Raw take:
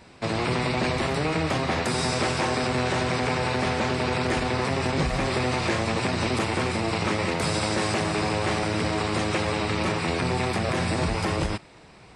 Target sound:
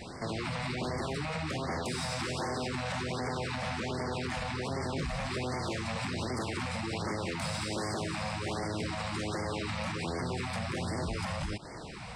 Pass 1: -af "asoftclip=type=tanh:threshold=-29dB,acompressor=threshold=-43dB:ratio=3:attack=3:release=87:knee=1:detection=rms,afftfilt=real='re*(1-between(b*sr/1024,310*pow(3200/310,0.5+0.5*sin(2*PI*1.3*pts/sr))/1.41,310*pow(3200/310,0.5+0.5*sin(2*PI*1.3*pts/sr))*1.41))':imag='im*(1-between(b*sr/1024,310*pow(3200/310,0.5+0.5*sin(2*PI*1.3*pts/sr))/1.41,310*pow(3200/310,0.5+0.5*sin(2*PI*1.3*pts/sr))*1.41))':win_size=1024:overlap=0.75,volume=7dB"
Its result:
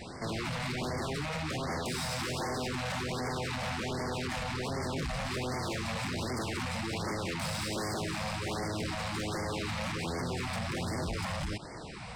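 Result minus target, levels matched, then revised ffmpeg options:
soft clipping: distortion +10 dB
-af "asoftclip=type=tanh:threshold=-19dB,acompressor=threshold=-43dB:ratio=3:attack=3:release=87:knee=1:detection=rms,afftfilt=real='re*(1-between(b*sr/1024,310*pow(3200/310,0.5+0.5*sin(2*PI*1.3*pts/sr))/1.41,310*pow(3200/310,0.5+0.5*sin(2*PI*1.3*pts/sr))*1.41))':imag='im*(1-between(b*sr/1024,310*pow(3200/310,0.5+0.5*sin(2*PI*1.3*pts/sr))/1.41,310*pow(3200/310,0.5+0.5*sin(2*PI*1.3*pts/sr))*1.41))':win_size=1024:overlap=0.75,volume=7dB"

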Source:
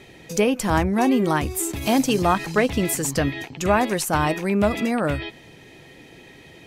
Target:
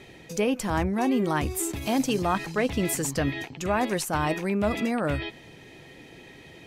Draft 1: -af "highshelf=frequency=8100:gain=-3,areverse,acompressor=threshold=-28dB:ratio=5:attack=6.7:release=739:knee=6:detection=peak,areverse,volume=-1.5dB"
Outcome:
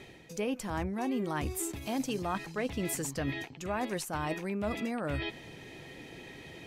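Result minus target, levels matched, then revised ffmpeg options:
downward compressor: peak gain reduction +9 dB
-af "highshelf=frequency=8100:gain=-3,areverse,acompressor=threshold=-17dB:ratio=5:attack=6.7:release=739:knee=6:detection=peak,areverse,volume=-1.5dB"

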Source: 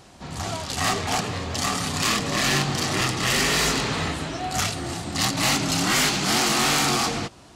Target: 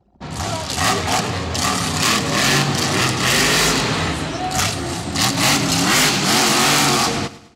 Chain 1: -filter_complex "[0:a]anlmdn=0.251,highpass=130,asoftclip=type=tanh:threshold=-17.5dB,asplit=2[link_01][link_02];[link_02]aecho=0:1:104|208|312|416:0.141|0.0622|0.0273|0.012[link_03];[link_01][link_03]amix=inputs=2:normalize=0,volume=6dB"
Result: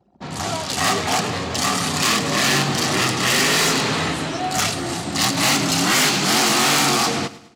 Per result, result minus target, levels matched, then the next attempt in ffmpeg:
soft clipping: distortion +22 dB; 125 Hz band −2.5 dB
-filter_complex "[0:a]anlmdn=0.251,highpass=130,asoftclip=type=tanh:threshold=-6dB,asplit=2[link_01][link_02];[link_02]aecho=0:1:104|208|312|416:0.141|0.0622|0.0273|0.012[link_03];[link_01][link_03]amix=inputs=2:normalize=0,volume=6dB"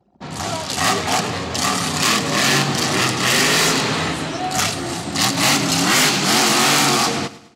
125 Hz band −2.5 dB
-filter_complex "[0:a]anlmdn=0.251,highpass=53,asoftclip=type=tanh:threshold=-6dB,asplit=2[link_01][link_02];[link_02]aecho=0:1:104|208|312|416:0.141|0.0622|0.0273|0.012[link_03];[link_01][link_03]amix=inputs=2:normalize=0,volume=6dB"

